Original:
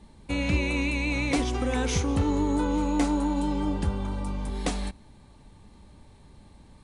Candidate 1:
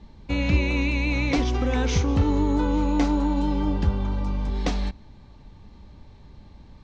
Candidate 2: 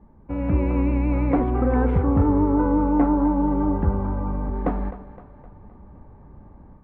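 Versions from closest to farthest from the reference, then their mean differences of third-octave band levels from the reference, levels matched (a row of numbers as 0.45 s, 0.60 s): 1, 2; 2.0 dB, 7.5 dB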